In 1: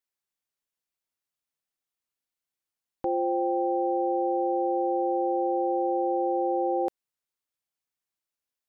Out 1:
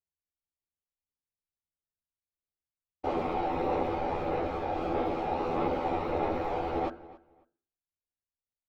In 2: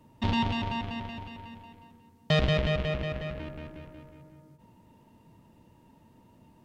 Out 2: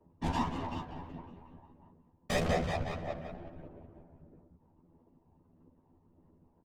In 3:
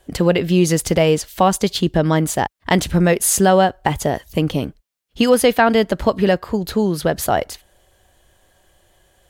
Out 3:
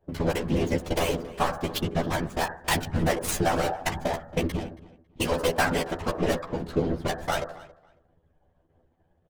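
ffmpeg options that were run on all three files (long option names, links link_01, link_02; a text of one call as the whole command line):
ffmpeg -i in.wav -filter_complex "[0:a]aeval=exprs='if(lt(val(0),0),0.251*val(0),val(0))':channel_layout=same,adynamicsmooth=sensitivity=2:basefreq=640,lowshelf=frequency=160:gain=-6.5,bandreject=frequency=50.53:width_type=h:width=4,bandreject=frequency=101.06:width_type=h:width=4,bandreject=frequency=151.59:width_type=h:width=4,bandreject=frequency=202.12:width_type=h:width=4,bandreject=frequency=252.65:width_type=h:width=4,bandreject=frequency=303.18:width_type=h:width=4,bandreject=frequency=353.71:width_type=h:width=4,bandreject=frequency=404.24:width_type=h:width=4,bandreject=frequency=454.77:width_type=h:width=4,bandreject=frequency=505.3:width_type=h:width=4,bandreject=frequency=555.83:width_type=h:width=4,bandreject=frequency=606.36:width_type=h:width=4,bandreject=frequency=656.89:width_type=h:width=4,bandreject=frequency=707.42:width_type=h:width=4,bandreject=frequency=757.95:width_type=h:width=4,bandreject=frequency=808.48:width_type=h:width=4,bandreject=frequency=859.01:width_type=h:width=4,bandreject=frequency=909.54:width_type=h:width=4,bandreject=frequency=960.07:width_type=h:width=4,bandreject=frequency=1010.6:width_type=h:width=4,bandreject=frequency=1061.13:width_type=h:width=4,bandreject=frequency=1111.66:width_type=h:width=4,bandreject=frequency=1162.19:width_type=h:width=4,bandreject=frequency=1212.72:width_type=h:width=4,bandreject=frequency=1263.25:width_type=h:width=4,bandreject=frequency=1313.78:width_type=h:width=4,bandreject=frequency=1364.31:width_type=h:width=4,bandreject=frequency=1414.84:width_type=h:width=4,bandreject=frequency=1465.37:width_type=h:width=4,bandreject=frequency=1515.9:width_type=h:width=4,bandreject=frequency=1566.43:width_type=h:width=4,bandreject=frequency=1616.96:width_type=h:width=4,bandreject=frequency=1667.49:width_type=h:width=4,bandreject=frequency=1718.02:width_type=h:width=4,bandreject=frequency=1768.55:width_type=h:width=4,bandreject=frequency=1819.08:width_type=h:width=4,acompressor=threshold=-24dB:ratio=2.5,tremolo=f=89:d=0.667,afftfilt=real='hypot(re,im)*cos(2*PI*random(0))':imag='hypot(re,im)*sin(2*PI*random(1))':win_size=512:overlap=0.75,aphaser=in_gain=1:out_gain=1:delay=1.3:decay=0.26:speed=1.6:type=sinusoidal,aemphasis=mode=production:type=50kf,asplit=2[link_01][link_02];[link_02]adelay=12,volume=-2dB[link_03];[link_01][link_03]amix=inputs=2:normalize=0,asplit=2[link_04][link_05];[link_05]adelay=275,lowpass=frequency=3300:poles=1,volume=-19dB,asplit=2[link_06][link_07];[link_07]adelay=275,lowpass=frequency=3300:poles=1,volume=0.21[link_08];[link_06][link_08]amix=inputs=2:normalize=0[link_09];[link_04][link_09]amix=inputs=2:normalize=0,volume=6.5dB" out.wav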